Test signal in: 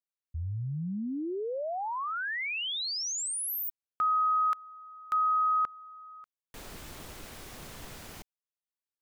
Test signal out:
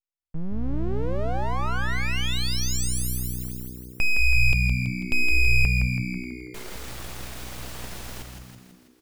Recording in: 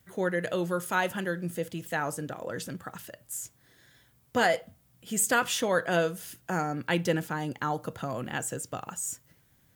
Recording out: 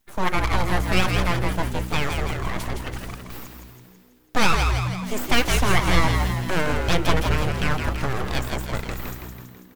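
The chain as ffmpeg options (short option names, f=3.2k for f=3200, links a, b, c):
-filter_complex "[0:a]acrossover=split=6100[a][b];[b]acompressor=threshold=-49dB:ratio=4:attack=1:release=60[c];[a][c]amix=inputs=2:normalize=0,agate=range=-12dB:threshold=-52dB:ratio=16:release=89:detection=rms,aeval=exprs='abs(val(0))':c=same,asplit=9[d][e][f][g][h][i][j][k][l];[e]adelay=164,afreqshift=-62,volume=-5dB[m];[f]adelay=328,afreqshift=-124,volume=-9.9dB[n];[g]adelay=492,afreqshift=-186,volume=-14.8dB[o];[h]adelay=656,afreqshift=-248,volume=-19.6dB[p];[i]adelay=820,afreqshift=-310,volume=-24.5dB[q];[j]adelay=984,afreqshift=-372,volume=-29.4dB[r];[k]adelay=1148,afreqshift=-434,volume=-34.3dB[s];[l]adelay=1312,afreqshift=-496,volume=-39.2dB[t];[d][m][n][o][p][q][r][s][t]amix=inputs=9:normalize=0,volume=8.5dB"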